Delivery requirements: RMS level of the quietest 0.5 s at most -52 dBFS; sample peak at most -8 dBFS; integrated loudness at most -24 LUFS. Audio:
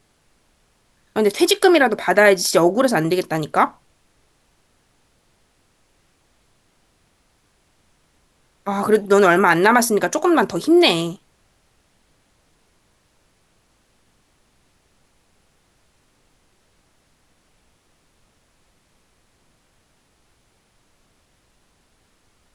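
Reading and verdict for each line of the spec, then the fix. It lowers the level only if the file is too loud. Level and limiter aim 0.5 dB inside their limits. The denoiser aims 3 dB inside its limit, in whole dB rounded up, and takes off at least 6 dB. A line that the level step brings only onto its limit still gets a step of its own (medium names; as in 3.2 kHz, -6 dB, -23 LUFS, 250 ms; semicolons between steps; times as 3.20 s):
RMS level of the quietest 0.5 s -62 dBFS: pass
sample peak -2.0 dBFS: fail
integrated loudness -16.5 LUFS: fail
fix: trim -8 dB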